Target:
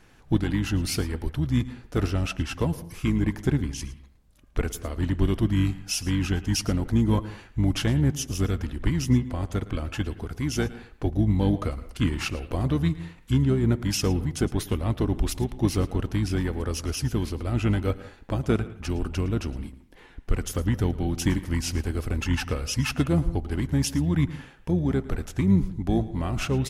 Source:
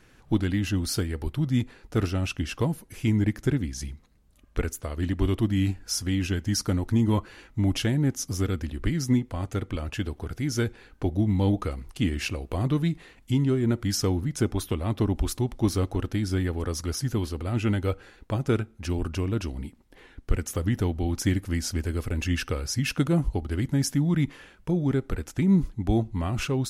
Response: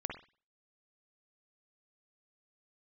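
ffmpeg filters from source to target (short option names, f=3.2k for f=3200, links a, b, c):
-filter_complex "[0:a]asplit=2[a][b];[b]asetrate=22050,aresample=44100,atempo=2,volume=-7dB[c];[a][c]amix=inputs=2:normalize=0,asplit=2[d][e];[1:a]atrim=start_sample=2205,adelay=111[f];[e][f]afir=irnorm=-1:irlink=0,volume=-16dB[g];[d][g]amix=inputs=2:normalize=0"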